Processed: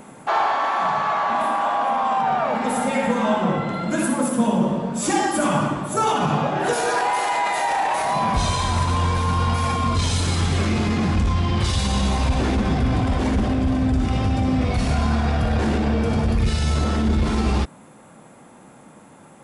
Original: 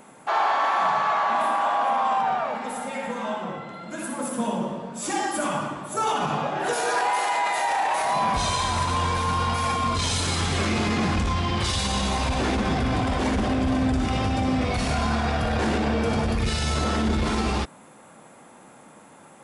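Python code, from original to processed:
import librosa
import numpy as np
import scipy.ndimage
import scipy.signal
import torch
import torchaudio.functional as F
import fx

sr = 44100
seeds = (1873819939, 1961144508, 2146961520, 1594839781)

y = fx.low_shelf(x, sr, hz=290.0, db=8.5)
y = fx.rider(y, sr, range_db=10, speed_s=0.5)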